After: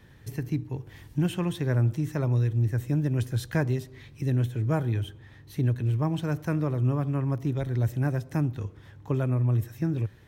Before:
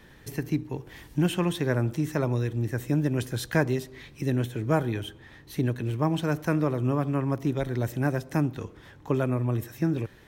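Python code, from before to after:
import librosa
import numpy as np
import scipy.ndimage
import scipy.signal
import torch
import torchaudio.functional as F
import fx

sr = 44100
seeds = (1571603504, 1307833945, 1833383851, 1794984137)

y = fx.peak_eq(x, sr, hz=100.0, db=12.0, octaves=1.1)
y = F.gain(torch.from_numpy(y), -5.0).numpy()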